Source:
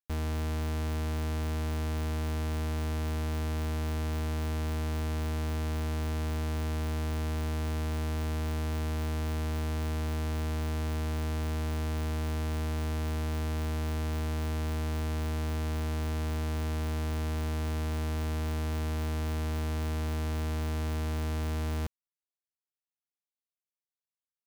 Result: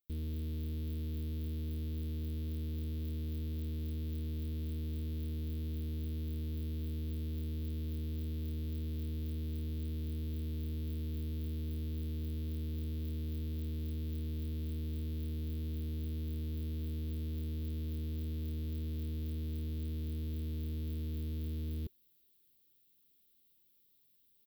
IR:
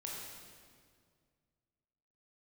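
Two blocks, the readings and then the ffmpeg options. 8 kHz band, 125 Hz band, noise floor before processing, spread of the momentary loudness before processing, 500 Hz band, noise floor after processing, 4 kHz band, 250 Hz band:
-18.0 dB, -6.0 dB, under -85 dBFS, 0 LU, -12.0 dB, -70 dBFS, -12.0 dB, -6.0 dB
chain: -af "alimiter=level_in=17.5dB:limit=-24dB:level=0:latency=1:release=16,volume=-17.5dB,firequalizer=gain_entry='entry(380,0);entry(710,-26);entry(3500,-3);entry(6600,-17);entry(16000,6)':delay=0.05:min_phase=1,areverse,acompressor=mode=upward:threshold=-56dB:ratio=2.5,areverse,volume=4.5dB"

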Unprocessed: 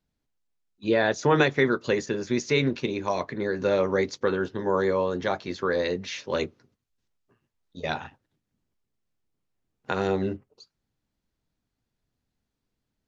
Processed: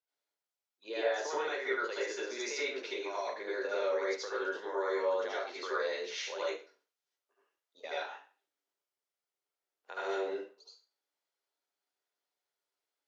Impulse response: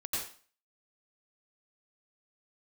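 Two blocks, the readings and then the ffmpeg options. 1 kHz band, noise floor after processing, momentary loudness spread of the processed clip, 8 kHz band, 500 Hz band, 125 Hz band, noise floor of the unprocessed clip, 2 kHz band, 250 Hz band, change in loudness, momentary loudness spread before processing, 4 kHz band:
-8.0 dB, under -85 dBFS, 10 LU, n/a, -9.0 dB, under -40 dB, -82 dBFS, -7.5 dB, -17.5 dB, -9.5 dB, 10 LU, -6.5 dB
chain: -filter_complex "[0:a]highpass=f=460:w=0.5412,highpass=f=460:w=1.3066,alimiter=limit=-20.5dB:level=0:latency=1:release=192[a];[1:a]atrim=start_sample=2205,asetrate=52920,aresample=44100[b];[a][b]afir=irnorm=-1:irlink=0,volume=-5dB"

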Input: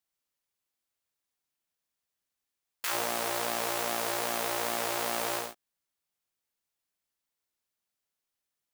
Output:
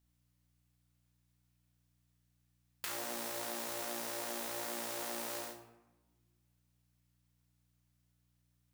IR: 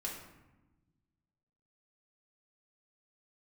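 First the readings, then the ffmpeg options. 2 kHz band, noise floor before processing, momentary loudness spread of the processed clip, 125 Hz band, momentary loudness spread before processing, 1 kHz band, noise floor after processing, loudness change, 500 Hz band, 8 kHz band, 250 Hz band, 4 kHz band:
-10.5 dB, under -85 dBFS, 4 LU, -9.5 dB, 3 LU, -11.5 dB, -76 dBFS, -8.5 dB, -9.5 dB, -7.0 dB, -5.5 dB, -9.0 dB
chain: -filter_complex "[0:a]acrossover=split=410|4200[a][b][c];[a]acompressor=threshold=-54dB:ratio=4[d];[b]acompressor=threshold=-47dB:ratio=4[e];[c]acompressor=threshold=-45dB:ratio=4[f];[d][e][f]amix=inputs=3:normalize=0,aeval=exprs='val(0)+0.000141*(sin(2*PI*60*n/s)+sin(2*PI*2*60*n/s)/2+sin(2*PI*3*60*n/s)/3+sin(2*PI*4*60*n/s)/4+sin(2*PI*5*60*n/s)/5)':c=same,asplit=2[g][h];[1:a]atrim=start_sample=2205,adelay=31[i];[h][i]afir=irnorm=-1:irlink=0,volume=-4dB[j];[g][j]amix=inputs=2:normalize=0,volume=1dB"

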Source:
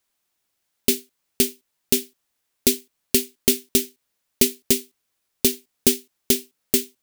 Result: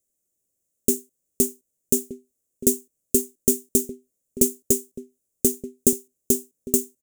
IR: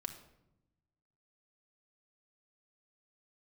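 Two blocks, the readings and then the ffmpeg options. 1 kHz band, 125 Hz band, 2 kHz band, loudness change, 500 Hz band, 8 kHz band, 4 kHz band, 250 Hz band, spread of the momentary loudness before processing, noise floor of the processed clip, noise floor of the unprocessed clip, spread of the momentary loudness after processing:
under -15 dB, 0.0 dB, under -20 dB, -1.5 dB, 0.0 dB, +0.5 dB, -16.5 dB, 0.0 dB, 3 LU, -78 dBFS, -76 dBFS, 8 LU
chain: -filter_complex "[0:a]firequalizer=gain_entry='entry(570,0);entry(850,-23);entry(4500,-19);entry(6900,3);entry(12000,-2)':delay=0.05:min_phase=1,asplit=2[a][b];[b]adelay=1224,volume=-13dB,highshelf=f=4k:g=-27.6[c];[a][c]amix=inputs=2:normalize=0"

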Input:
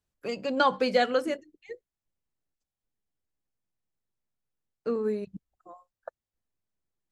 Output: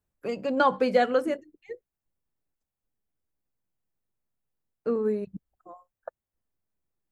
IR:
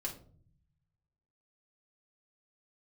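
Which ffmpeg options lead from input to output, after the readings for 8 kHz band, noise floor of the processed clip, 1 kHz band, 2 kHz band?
n/a, under -85 dBFS, +1.5 dB, -0.5 dB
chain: -af "equalizer=f=4.7k:t=o:w=2.1:g=-9,volume=2.5dB"

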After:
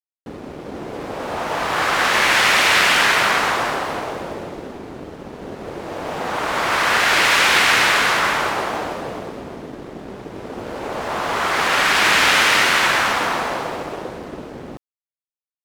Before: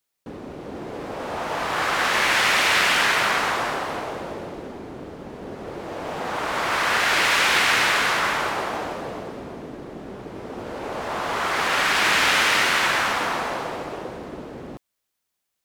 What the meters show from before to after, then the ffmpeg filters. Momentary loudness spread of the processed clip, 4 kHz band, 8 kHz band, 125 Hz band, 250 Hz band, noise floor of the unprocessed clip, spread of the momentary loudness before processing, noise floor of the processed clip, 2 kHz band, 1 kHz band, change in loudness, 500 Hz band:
21 LU, +4.0 dB, +4.0 dB, +3.5 dB, +3.5 dB, -79 dBFS, 20 LU, under -85 dBFS, +4.0 dB, +4.0 dB, +4.5 dB, +4.0 dB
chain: -af "aeval=exprs='sgn(val(0))*max(abs(val(0))-0.00398,0)':c=same,volume=4.5dB"

